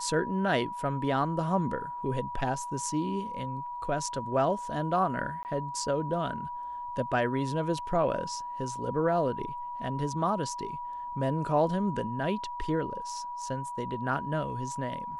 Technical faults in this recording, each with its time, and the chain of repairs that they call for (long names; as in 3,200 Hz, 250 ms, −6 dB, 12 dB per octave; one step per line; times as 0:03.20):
whistle 970 Hz −35 dBFS
0:05.43–0:05.45: drop-out 19 ms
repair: notch filter 970 Hz, Q 30
repair the gap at 0:05.43, 19 ms